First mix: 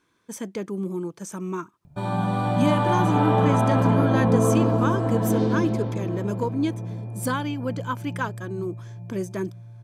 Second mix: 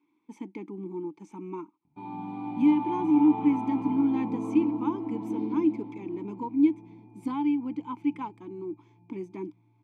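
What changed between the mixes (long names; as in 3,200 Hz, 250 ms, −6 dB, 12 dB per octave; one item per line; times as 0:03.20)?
speech +6.0 dB
master: add formant filter u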